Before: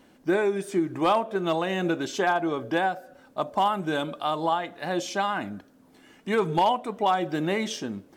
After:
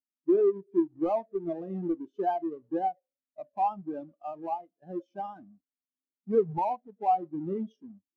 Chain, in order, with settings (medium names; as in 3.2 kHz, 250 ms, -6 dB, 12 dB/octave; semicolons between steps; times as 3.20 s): square wave that keeps the level; spectral contrast expander 2.5:1